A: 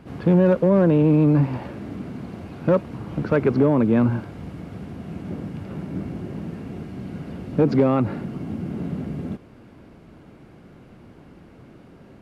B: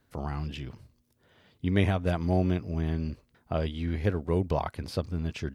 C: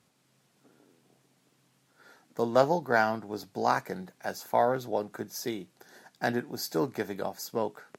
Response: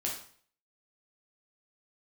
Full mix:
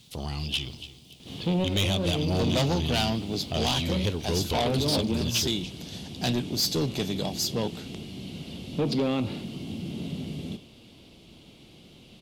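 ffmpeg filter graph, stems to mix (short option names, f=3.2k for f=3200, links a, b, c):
-filter_complex "[0:a]adelay=1200,volume=-7.5dB,asplit=2[a][b];[b]volume=-12dB[c];[1:a]volume=1dB,asplit=3[d][e][f];[e]volume=-16.5dB[g];[2:a]lowpass=11k,bass=f=250:g=12,treble=f=4k:g=-5,asoftclip=type=tanh:threshold=-17.5dB,volume=2.5dB[h];[f]apad=whole_len=591715[i];[a][i]sidechaincompress=threshold=-36dB:ratio=8:attack=16:release=106[j];[3:a]atrim=start_sample=2205[k];[c][k]afir=irnorm=-1:irlink=0[l];[g]aecho=0:1:284|568|852|1136:1|0.28|0.0784|0.022[m];[j][d][h][l][m]amix=inputs=5:normalize=0,highshelf=f=2.3k:t=q:w=3:g=13,asoftclip=type=tanh:threshold=-19.5dB"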